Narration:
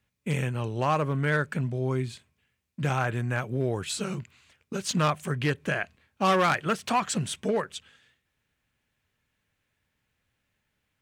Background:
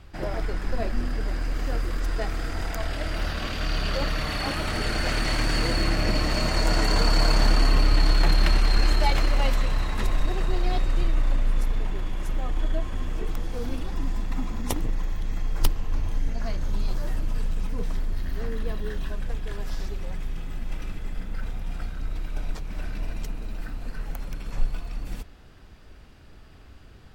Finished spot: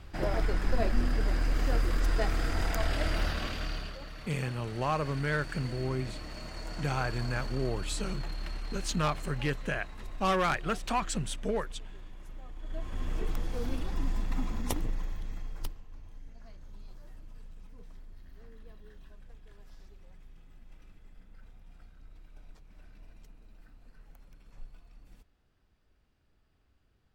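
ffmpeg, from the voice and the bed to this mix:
-filter_complex "[0:a]adelay=4000,volume=0.562[s0];[1:a]volume=5.01,afade=t=out:st=3.06:d=0.91:silence=0.133352,afade=t=in:st=12.62:d=0.51:silence=0.188365,afade=t=out:st=14.53:d=1.32:silence=0.11885[s1];[s0][s1]amix=inputs=2:normalize=0"

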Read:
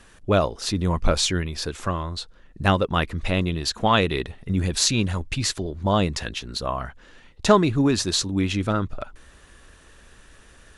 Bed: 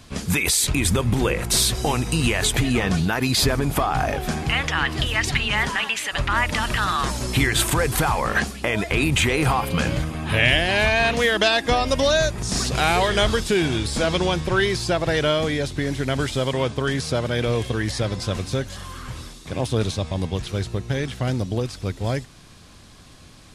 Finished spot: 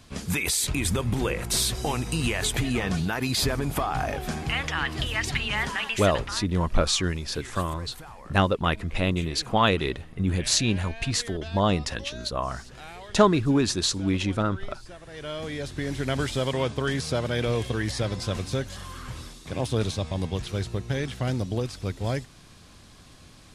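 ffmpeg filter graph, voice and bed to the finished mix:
-filter_complex "[0:a]adelay=5700,volume=0.794[s0];[1:a]volume=5.31,afade=t=out:st=6.03:d=0.41:silence=0.125893,afade=t=in:st=15.09:d=1.01:silence=0.1[s1];[s0][s1]amix=inputs=2:normalize=0"

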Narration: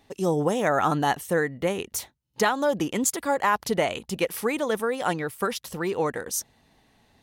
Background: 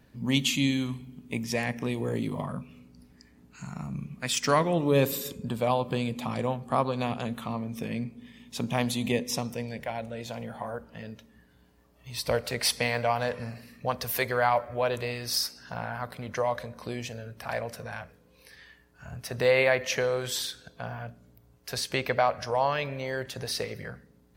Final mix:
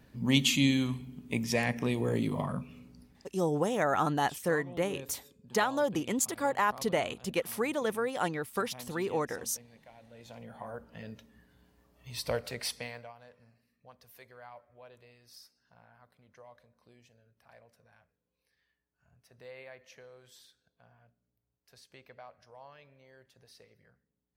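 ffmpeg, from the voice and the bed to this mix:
-filter_complex "[0:a]adelay=3150,volume=0.531[s0];[1:a]volume=8.41,afade=t=out:st=2.9:d=0.5:silence=0.0841395,afade=t=in:st=10:d=1.12:silence=0.11885,afade=t=out:st=12.06:d=1.07:silence=0.0707946[s1];[s0][s1]amix=inputs=2:normalize=0"

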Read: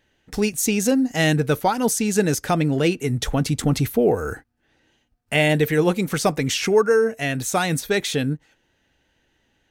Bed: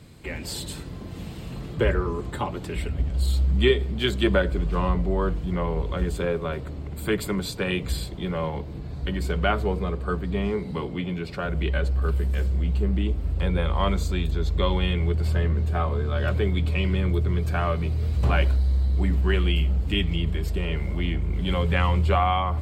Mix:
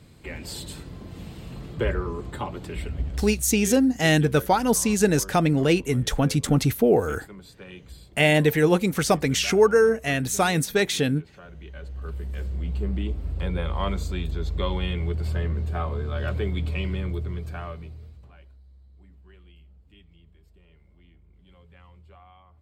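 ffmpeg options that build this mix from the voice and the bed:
-filter_complex "[0:a]adelay=2850,volume=0.944[s0];[1:a]volume=3.35,afade=t=out:st=3.06:d=0.38:silence=0.199526,afade=t=in:st=11.71:d=1.17:silence=0.211349,afade=t=out:st=16.71:d=1.56:silence=0.0446684[s1];[s0][s1]amix=inputs=2:normalize=0"

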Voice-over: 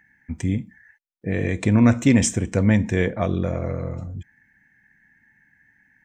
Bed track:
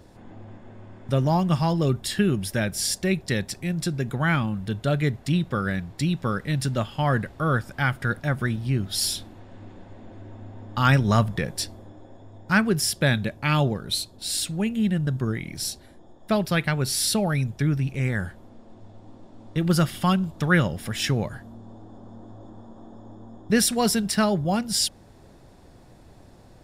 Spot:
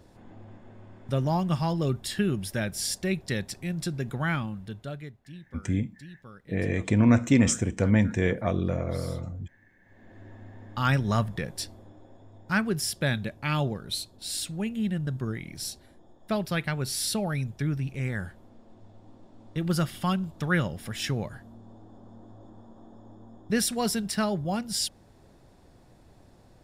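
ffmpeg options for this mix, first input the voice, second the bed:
-filter_complex "[0:a]adelay=5250,volume=0.631[s0];[1:a]volume=3.98,afade=t=out:st=4.18:d=0.96:silence=0.133352,afade=t=in:st=9.81:d=0.44:silence=0.149624[s1];[s0][s1]amix=inputs=2:normalize=0"

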